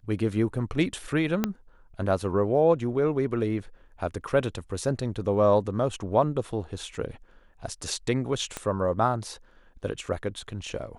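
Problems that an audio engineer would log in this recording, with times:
1.44 pop -10 dBFS
8.57 pop -16 dBFS

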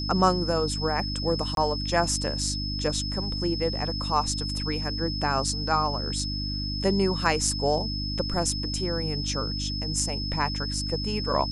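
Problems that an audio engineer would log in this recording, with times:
hum 50 Hz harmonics 6 -32 dBFS
tone 5200 Hz -32 dBFS
1.55–1.57 gap 22 ms

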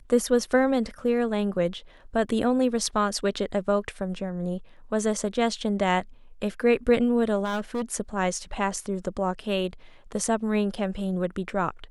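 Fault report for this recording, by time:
7.44–7.82 clipped -24 dBFS

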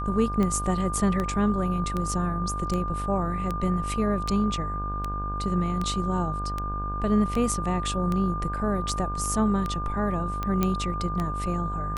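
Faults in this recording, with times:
buzz 50 Hz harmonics 33 -32 dBFS
tick 78 rpm -16 dBFS
tone 1200 Hz -31 dBFS
10.63 pop -10 dBFS

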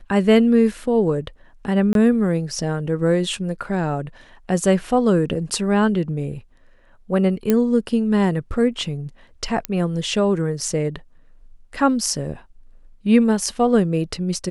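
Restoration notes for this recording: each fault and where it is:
1.93–1.95 gap 22 ms
7.5 pop -5 dBFS
9.65 pop -7 dBFS

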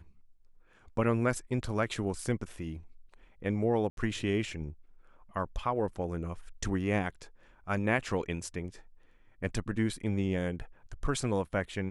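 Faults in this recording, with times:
3.9–3.97 gap 72 ms

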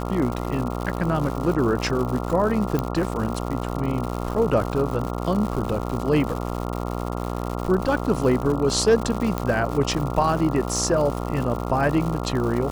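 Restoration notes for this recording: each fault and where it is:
buzz 60 Hz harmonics 23 -28 dBFS
crackle 200/s -28 dBFS
2.79 pop -11 dBFS
9.38 pop -11 dBFS

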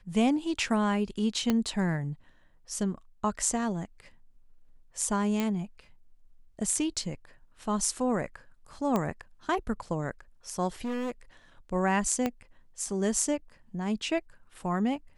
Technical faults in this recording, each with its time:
1.5 pop -12 dBFS
5.4 pop -16 dBFS
8.96 pop -15 dBFS
10.84–11.12 clipped -29.5 dBFS
12.26 pop -15 dBFS

